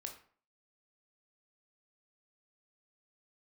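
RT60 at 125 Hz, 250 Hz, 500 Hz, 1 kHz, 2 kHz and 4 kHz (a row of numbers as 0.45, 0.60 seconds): 0.50, 0.50, 0.45, 0.50, 0.40, 0.35 seconds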